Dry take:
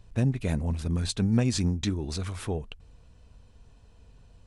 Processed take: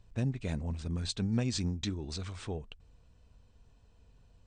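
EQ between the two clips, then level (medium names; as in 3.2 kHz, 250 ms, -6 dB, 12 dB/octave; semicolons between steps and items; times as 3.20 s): dynamic bell 4 kHz, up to +4 dB, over -49 dBFS, Q 1.1; brick-wall FIR low-pass 9 kHz; -7.0 dB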